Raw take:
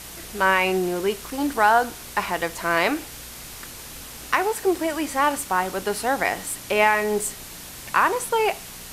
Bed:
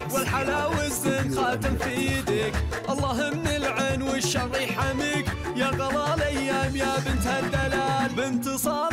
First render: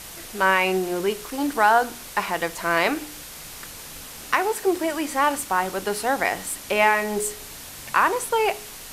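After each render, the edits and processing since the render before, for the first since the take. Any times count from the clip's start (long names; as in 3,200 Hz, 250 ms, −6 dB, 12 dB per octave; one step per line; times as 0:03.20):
hum removal 60 Hz, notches 7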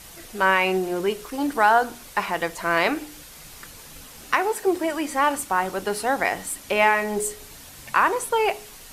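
broadband denoise 6 dB, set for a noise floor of −40 dBFS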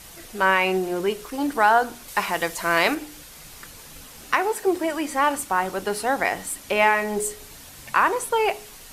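0:02.08–0:02.95: high-shelf EQ 3,400 Hz +7 dB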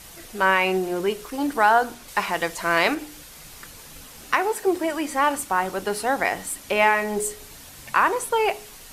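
0:01.94–0:02.99: high-shelf EQ 9,500 Hz −6 dB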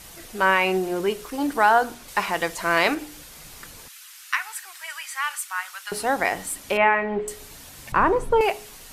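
0:03.88–0:05.92: inverse Chebyshev high-pass filter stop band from 220 Hz, stop band 80 dB
0:06.77–0:07.28: low-pass filter 2,700 Hz 24 dB per octave
0:07.92–0:08.41: spectral tilt −4.5 dB per octave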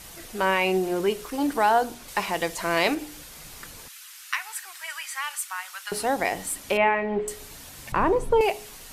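dynamic equaliser 1,400 Hz, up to −8 dB, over −34 dBFS, Q 1.4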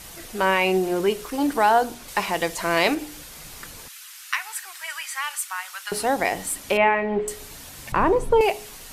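level +2.5 dB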